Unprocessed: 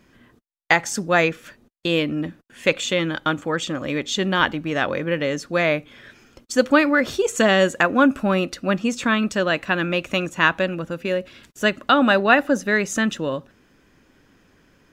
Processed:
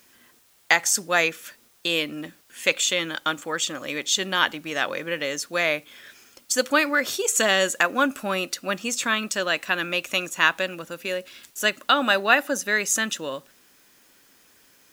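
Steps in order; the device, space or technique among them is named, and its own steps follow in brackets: turntable without a phono preamp (RIAA curve recording; white noise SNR 34 dB); trim -3.5 dB

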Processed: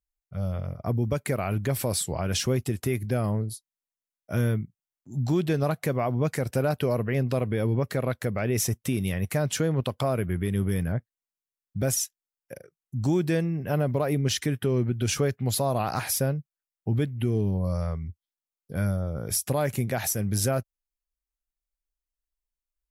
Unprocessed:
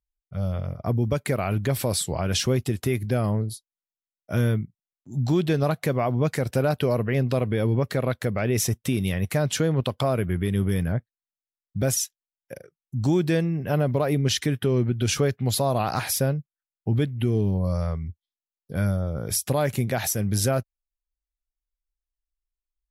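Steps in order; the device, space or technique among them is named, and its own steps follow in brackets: exciter from parts (in parallel at -8 dB: high-pass 3.4 kHz 24 dB/octave + saturation -24 dBFS, distortion -12 dB); on the sum: trim -2.5 dB

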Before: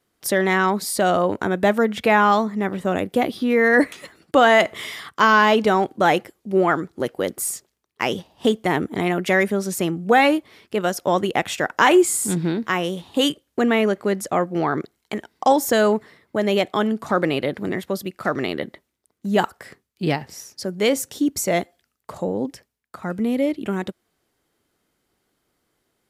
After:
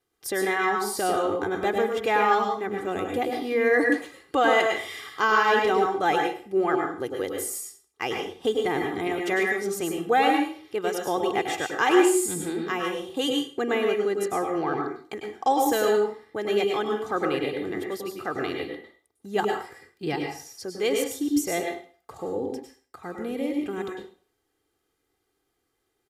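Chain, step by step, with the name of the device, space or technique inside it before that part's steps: microphone above a desk (comb 2.5 ms, depth 60%; reverberation RT60 0.40 s, pre-delay 96 ms, DRR 2 dB); trim -8.5 dB

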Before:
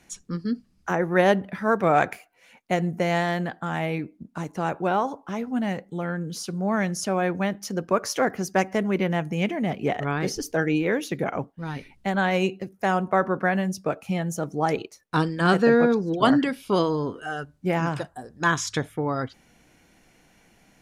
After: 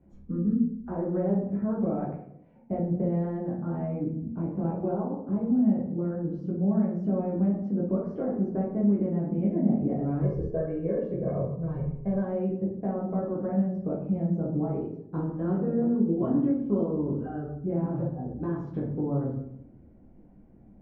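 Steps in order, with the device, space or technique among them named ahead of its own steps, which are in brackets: television next door (compression 4:1, threshold -28 dBFS, peak gain reduction 12.5 dB; low-pass 370 Hz 12 dB/octave; reverberation RT60 0.75 s, pre-delay 8 ms, DRR -6 dB); 4.28–4.89 s: peaking EQ 2.4 kHz +8 dB 0.28 oct; 10.22–12.25 s: comb 1.8 ms, depth 76%

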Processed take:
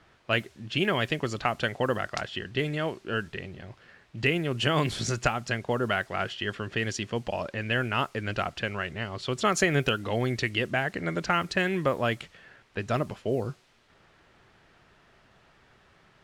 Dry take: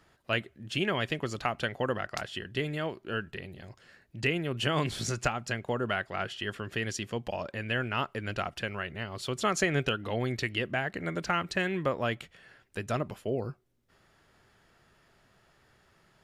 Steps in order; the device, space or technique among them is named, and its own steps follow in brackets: cassette deck with a dynamic noise filter (white noise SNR 27 dB; level-controlled noise filter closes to 2.7 kHz, open at -25 dBFS); trim +3.5 dB

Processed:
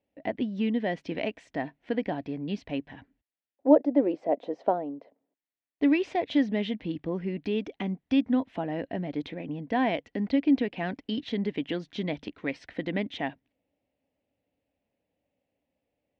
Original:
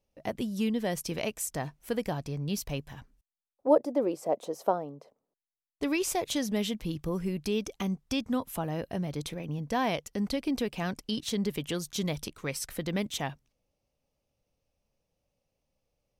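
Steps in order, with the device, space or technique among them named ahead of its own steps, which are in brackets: guitar cabinet (cabinet simulation 94–3400 Hz, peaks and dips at 140 Hz -8 dB, 280 Hz +10 dB, 680 Hz +4 dB, 1.2 kHz -8 dB, 1.9 kHz +6 dB)

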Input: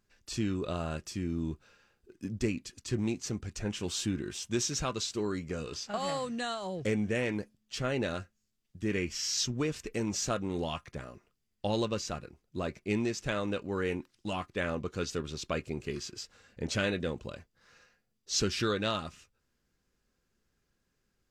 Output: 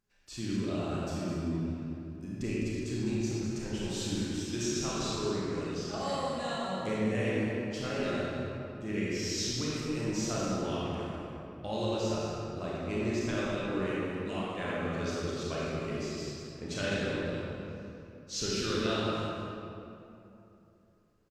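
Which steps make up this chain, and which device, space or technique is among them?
cave (delay 205 ms -9 dB; reverberation RT60 3.0 s, pre-delay 28 ms, DRR -7 dB); trim -8 dB

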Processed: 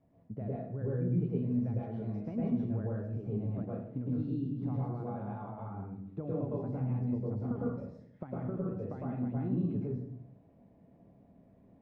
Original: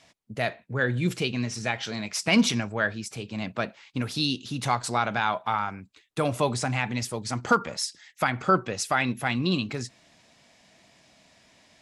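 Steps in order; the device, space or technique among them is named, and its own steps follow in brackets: television next door (compression 3:1, threshold -34 dBFS, peak gain reduction 14 dB; low-pass 370 Hz 12 dB/octave; reverberation RT60 0.70 s, pre-delay 102 ms, DRR -5.5 dB); trim -1.5 dB

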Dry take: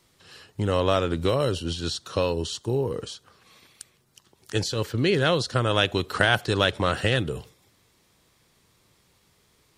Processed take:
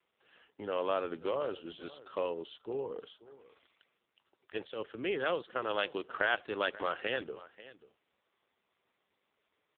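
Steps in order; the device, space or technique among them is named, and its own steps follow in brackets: satellite phone (band-pass 370–3400 Hz; delay 536 ms -18 dB; trim -7.5 dB; AMR-NB 5.9 kbps 8 kHz)

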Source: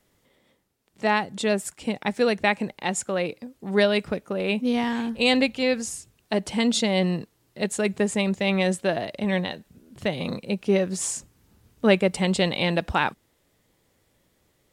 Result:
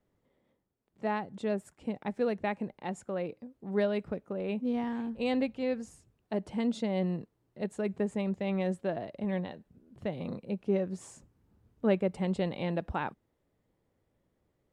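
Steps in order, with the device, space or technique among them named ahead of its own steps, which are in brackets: through cloth (treble shelf 2 kHz -17 dB); trim -7 dB

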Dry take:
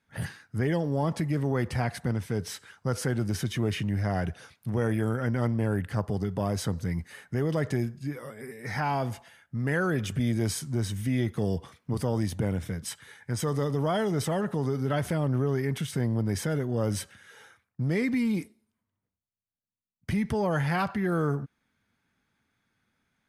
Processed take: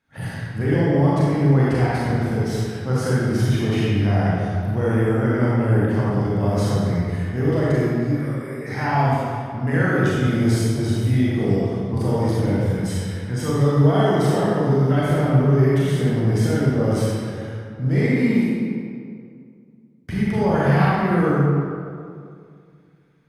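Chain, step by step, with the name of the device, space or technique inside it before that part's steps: swimming-pool hall (reverberation RT60 2.3 s, pre-delay 29 ms, DRR -8 dB; treble shelf 5.2 kHz -6 dB)

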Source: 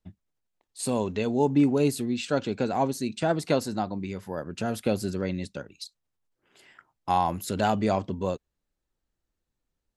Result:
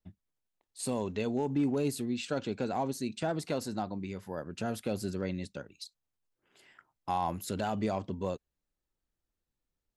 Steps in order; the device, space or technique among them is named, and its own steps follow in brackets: limiter into clipper (peak limiter -16 dBFS, peak gain reduction 5.5 dB; hard clipper -17 dBFS, distortion -34 dB); trim -5 dB

